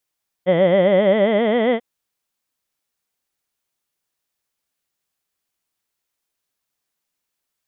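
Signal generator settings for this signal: formant vowel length 1.34 s, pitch 172 Hz, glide +6 st, vibrato 7.5 Hz, vibrato depth 1.35 st, F1 570 Hz, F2 2000 Hz, F3 3200 Hz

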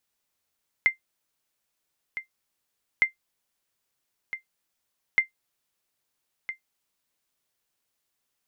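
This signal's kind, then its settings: sonar ping 2090 Hz, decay 0.12 s, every 2.16 s, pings 3, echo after 1.31 s, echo -13 dB -10.5 dBFS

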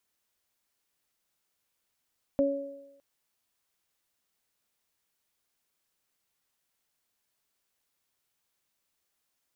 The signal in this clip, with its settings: additive tone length 0.61 s, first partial 279 Hz, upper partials 2.5 dB, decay 0.81 s, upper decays 0.98 s, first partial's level -24 dB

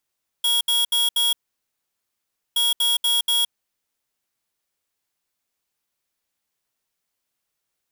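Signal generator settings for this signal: beep pattern square 3320 Hz, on 0.17 s, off 0.07 s, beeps 4, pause 1.23 s, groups 2, -19.5 dBFS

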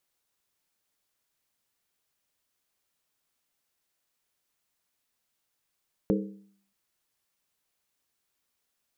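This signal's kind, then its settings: skin hit, lowest mode 198 Hz, decay 0.61 s, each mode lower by 2 dB, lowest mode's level -22 dB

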